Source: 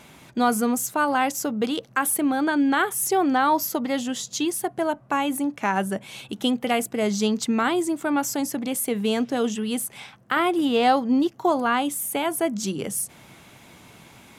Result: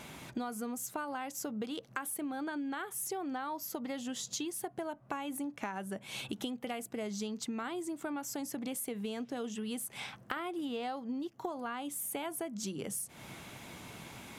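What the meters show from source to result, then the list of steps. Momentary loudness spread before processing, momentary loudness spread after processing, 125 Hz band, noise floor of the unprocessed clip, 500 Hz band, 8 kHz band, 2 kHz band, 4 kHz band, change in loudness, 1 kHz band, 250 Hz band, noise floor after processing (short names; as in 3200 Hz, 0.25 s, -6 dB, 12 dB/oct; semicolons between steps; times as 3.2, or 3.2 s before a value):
7 LU, 4 LU, -12.0 dB, -51 dBFS, -15.5 dB, -12.0 dB, -15.5 dB, -13.0 dB, -15.0 dB, -17.0 dB, -15.0 dB, -56 dBFS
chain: compressor 16:1, threshold -35 dBFS, peak gain reduction 21 dB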